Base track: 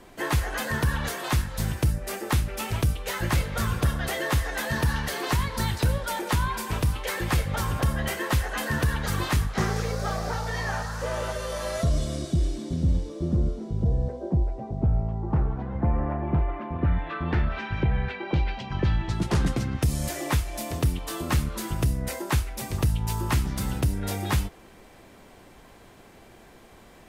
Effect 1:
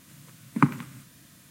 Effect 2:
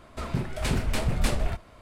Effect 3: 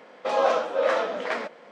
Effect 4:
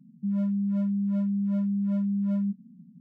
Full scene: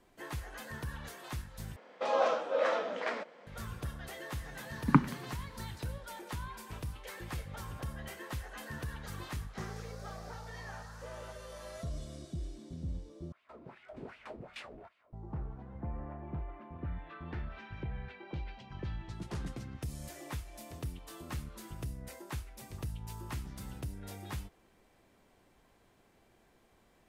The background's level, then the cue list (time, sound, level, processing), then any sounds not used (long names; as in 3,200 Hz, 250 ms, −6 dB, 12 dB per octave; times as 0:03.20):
base track −16 dB
0:01.76: overwrite with 3 −7 dB
0:04.32: mix in 1 −2.5 dB + low-pass filter 1,800 Hz 6 dB per octave
0:13.32: overwrite with 2 −8.5 dB + LFO wah 2.6 Hz 290–2,800 Hz, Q 2.3
not used: 4